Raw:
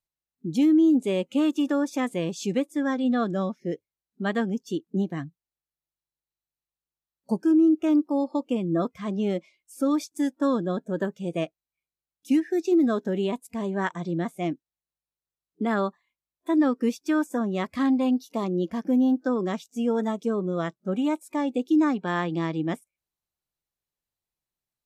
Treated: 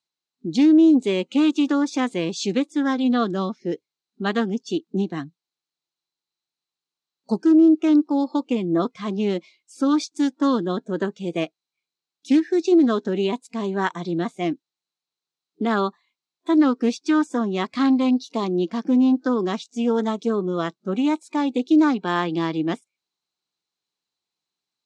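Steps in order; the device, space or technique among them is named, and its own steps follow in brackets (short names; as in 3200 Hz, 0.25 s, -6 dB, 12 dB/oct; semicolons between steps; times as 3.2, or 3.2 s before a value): full-range speaker at full volume (Doppler distortion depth 0.12 ms; speaker cabinet 220–7500 Hz, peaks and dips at 580 Hz -8 dB, 1800 Hz -4 dB, 4100 Hz +8 dB); gain +6 dB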